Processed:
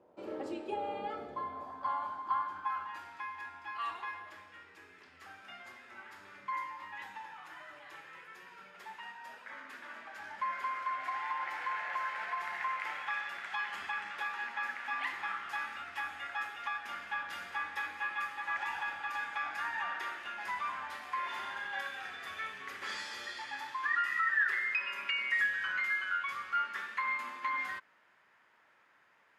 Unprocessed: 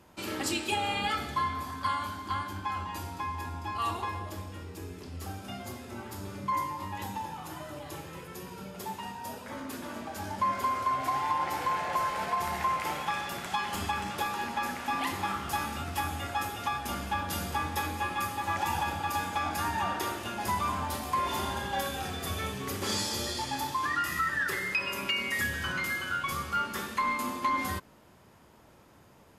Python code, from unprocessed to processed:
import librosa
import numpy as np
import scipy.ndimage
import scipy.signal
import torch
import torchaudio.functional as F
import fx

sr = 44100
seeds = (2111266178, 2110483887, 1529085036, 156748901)

y = fx.filter_sweep_bandpass(x, sr, from_hz=510.0, to_hz=1800.0, start_s=1.36, end_s=3.18, q=2.4)
y = y * librosa.db_to_amplitude(2.0)